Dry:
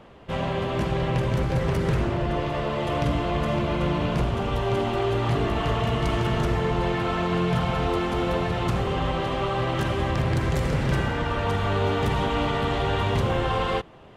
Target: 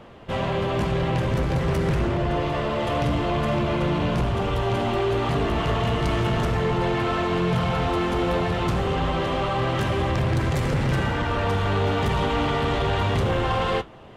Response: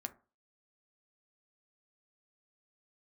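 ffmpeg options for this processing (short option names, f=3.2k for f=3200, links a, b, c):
-af "flanger=delay=8.3:depth=4.6:regen=-65:speed=0.28:shape=triangular,asoftclip=type=tanh:threshold=-23.5dB,volume=7.5dB"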